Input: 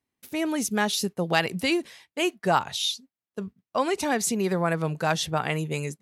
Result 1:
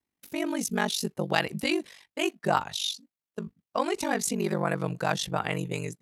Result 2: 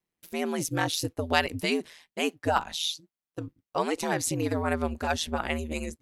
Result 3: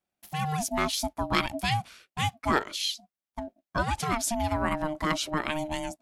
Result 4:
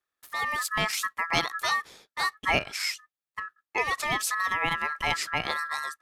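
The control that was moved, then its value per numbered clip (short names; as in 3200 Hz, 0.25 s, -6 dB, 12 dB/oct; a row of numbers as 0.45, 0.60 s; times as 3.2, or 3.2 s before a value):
ring modulator, frequency: 24, 81, 460, 1500 Hz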